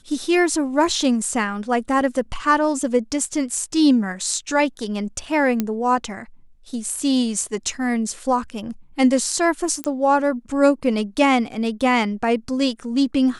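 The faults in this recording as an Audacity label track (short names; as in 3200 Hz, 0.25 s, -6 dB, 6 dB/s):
5.600000	5.600000	pop -8 dBFS
9.840000	9.840000	pop -10 dBFS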